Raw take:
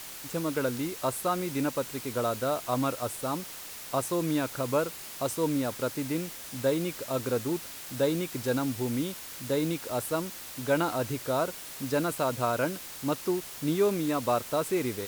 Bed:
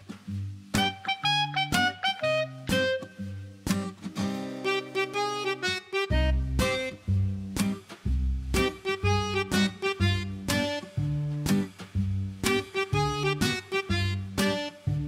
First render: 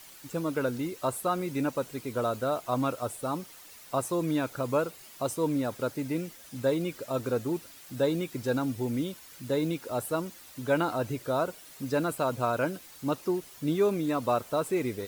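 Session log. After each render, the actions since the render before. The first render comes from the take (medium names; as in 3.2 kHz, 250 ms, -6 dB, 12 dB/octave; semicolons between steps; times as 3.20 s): noise reduction 10 dB, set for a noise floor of -43 dBFS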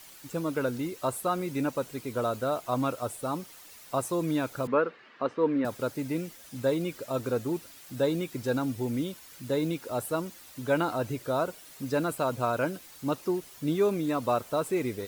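4.67–5.65 s: cabinet simulation 210–3400 Hz, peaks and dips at 240 Hz +6 dB, 460 Hz +5 dB, 680 Hz -3 dB, 1.2 kHz +5 dB, 1.7 kHz +9 dB, 3.4 kHz -4 dB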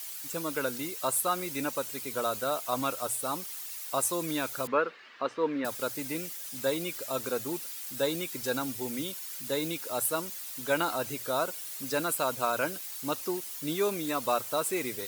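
tilt EQ +3 dB/octave; hum notches 60/120 Hz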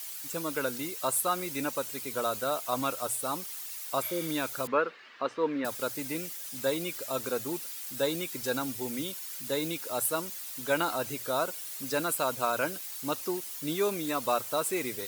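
4.05–4.26 s: spectral replace 620–11000 Hz after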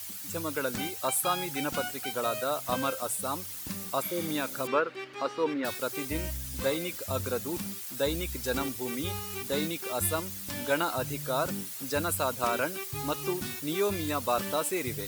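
add bed -12 dB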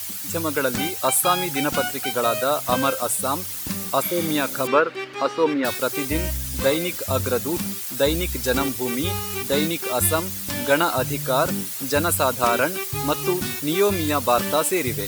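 trim +9 dB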